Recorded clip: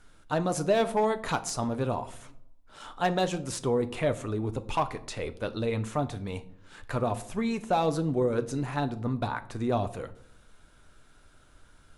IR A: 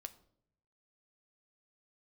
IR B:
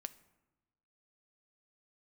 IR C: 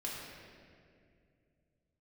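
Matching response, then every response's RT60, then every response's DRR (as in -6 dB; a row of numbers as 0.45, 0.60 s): A; 0.70, 1.1, 2.4 s; 9.0, 12.0, -5.5 dB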